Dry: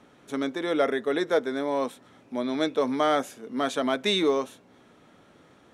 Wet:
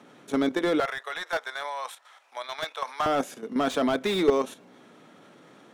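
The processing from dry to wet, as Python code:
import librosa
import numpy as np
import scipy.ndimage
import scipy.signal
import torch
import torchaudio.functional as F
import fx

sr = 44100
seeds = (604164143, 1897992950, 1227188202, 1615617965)

y = fx.highpass(x, sr, hz=fx.steps((0.0, 130.0), (0.8, 800.0), (3.06, 140.0)), slope=24)
y = fx.level_steps(y, sr, step_db=10)
y = fx.slew_limit(y, sr, full_power_hz=43.0)
y = F.gain(torch.from_numpy(y), 7.0).numpy()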